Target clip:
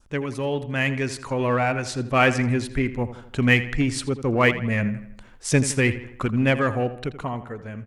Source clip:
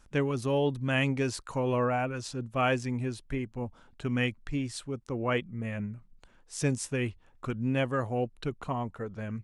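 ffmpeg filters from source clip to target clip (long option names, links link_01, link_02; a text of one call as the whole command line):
ffmpeg -i in.wav -filter_complex "[0:a]adynamicequalizer=threshold=0.00316:dfrequency=2000:dqfactor=2.3:tfrequency=2000:tqfactor=2.3:attack=5:release=100:ratio=0.375:range=4:mode=boostabove:tftype=bell,dynaudnorm=framelen=370:gausssize=11:maxgain=11.5dB,asplit=2[link_01][link_02];[link_02]volume=21.5dB,asoftclip=hard,volume=-21.5dB,volume=-9dB[link_03];[link_01][link_03]amix=inputs=2:normalize=0,atempo=1.2,asplit=2[link_04][link_05];[link_05]adelay=82,lowpass=frequency=3700:poles=1,volume=-13dB,asplit=2[link_06][link_07];[link_07]adelay=82,lowpass=frequency=3700:poles=1,volume=0.5,asplit=2[link_08][link_09];[link_09]adelay=82,lowpass=frequency=3700:poles=1,volume=0.5,asplit=2[link_10][link_11];[link_11]adelay=82,lowpass=frequency=3700:poles=1,volume=0.5,asplit=2[link_12][link_13];[link_13]adelay=82,lowpass=frequency=3700:poles=1,volume=0.5[link_14];[link_04][link_06][link_08][link_10][link_12][link_14]amix=inputs=6:normalize=0,volume=-1.5dB" out.wav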